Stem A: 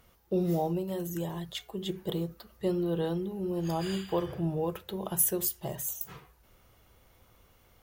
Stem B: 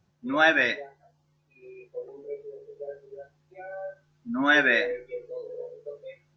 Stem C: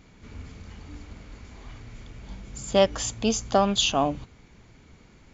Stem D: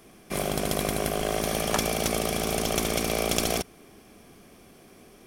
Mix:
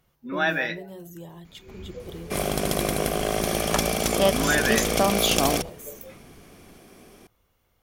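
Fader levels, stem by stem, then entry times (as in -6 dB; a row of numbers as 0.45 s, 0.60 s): -7.0 dB, -4.0 dB, -1.5 dB, +2.0 dB; 0.00 s, 0.00 s, 1.45 s, 2.00 s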